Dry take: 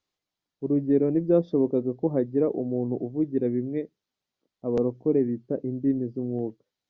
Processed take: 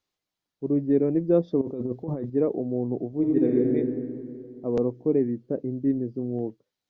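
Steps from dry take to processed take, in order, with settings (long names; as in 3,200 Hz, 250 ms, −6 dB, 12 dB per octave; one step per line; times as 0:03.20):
0:01.61–0:02.30: compressor whose output falls as the input rises −30 dBFS, ratio −1
0:03.08–0:03.68: thrown reverb, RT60 2.5 s, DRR −2.5 dB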